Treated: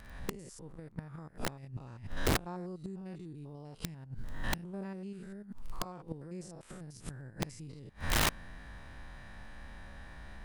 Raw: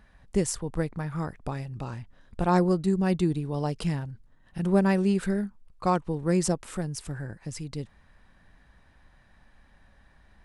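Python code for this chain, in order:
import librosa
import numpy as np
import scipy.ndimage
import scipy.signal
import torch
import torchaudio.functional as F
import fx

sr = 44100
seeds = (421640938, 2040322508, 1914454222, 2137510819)

y = fx.spec_steps(x, sr, hold_ms=100)
y = fx.recorder_agc(y, sr, target_db=-20.0, rise_db_per_s=40.0, max_gain_db=30)
y = fx.dmg_crackle(y, sr, seeds[0], per_s=10.0, level_db=-43.0)
y = fx.gate_flip(y, sr, shuts_db=-22.0, range_db=-25)
y = (np.mod(10.0 ** (29.0 / 20.0) * y + 1.0, 2.0) - 1.0) / 10.0 ** (29.0 / 20.0)
y = F.gain(torch.from_numpy(y), 6.0).numpy()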